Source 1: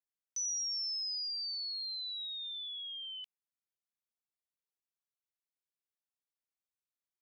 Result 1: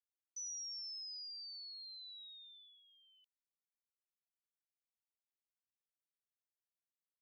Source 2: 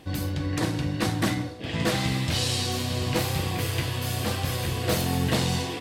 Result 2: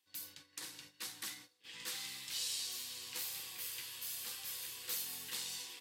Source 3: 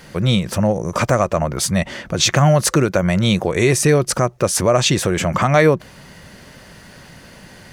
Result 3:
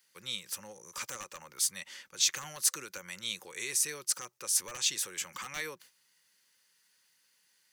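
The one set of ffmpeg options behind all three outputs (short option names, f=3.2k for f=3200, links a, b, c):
-filter_complex "[0:a]aderivative,agate=range=-12dB:threshold=-48dB:ratio=16:detection=peak,equalizer=f=10k:t=o:w=0.77:g=-2.5,acrossover=split=530|1200[a][b][c];[b]aeval=exprs='(mod(39.8*val(0)+1,2)-1)/39.8':c=same[d];[a][d][c]amix=inputs=3:normalize=0,asuperstop=centerf=660:order=4:qfactor=3.3,volume=-6.5dB"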